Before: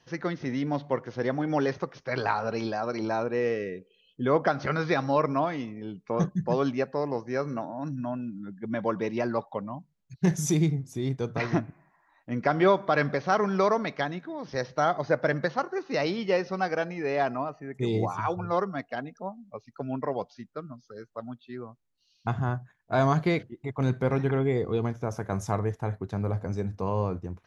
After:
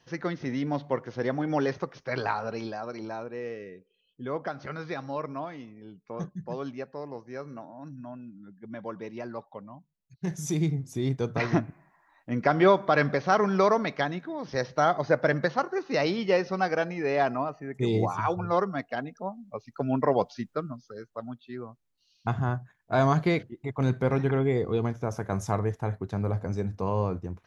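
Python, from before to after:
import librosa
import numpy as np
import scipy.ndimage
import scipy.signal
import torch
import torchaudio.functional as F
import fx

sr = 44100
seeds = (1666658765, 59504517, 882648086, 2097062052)

y = fx.gain(x, sr, db=fx.line((2.1, -0.5), (3.31, -9.0), (10.21, -9.0), (10.88, 1.5), (19.28, 1.5), (20.41, 8.5), (21.04, 0.5)))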